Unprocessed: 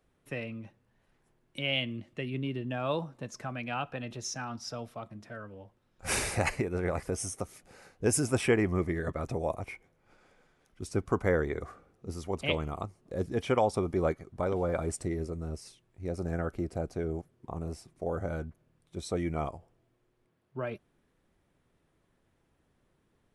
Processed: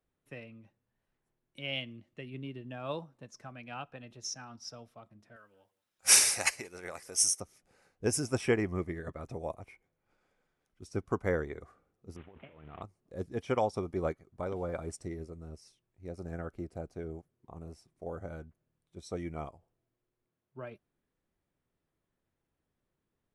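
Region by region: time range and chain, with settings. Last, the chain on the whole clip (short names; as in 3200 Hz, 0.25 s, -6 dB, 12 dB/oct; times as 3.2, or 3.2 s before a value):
5.36–7.4 tilt +4 dB/oct + echo 0.18 s -23.5 dB
12.16–12.82 CVSD 16 kbps + HPF 77 Hz + negative-ratio compressor -40 dBFS
whole clip: dynamic EQ 5600 Hz, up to +8 dB, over -59 dBFS, Q 4.3; upward expander 1.5:1, over -42 dBFS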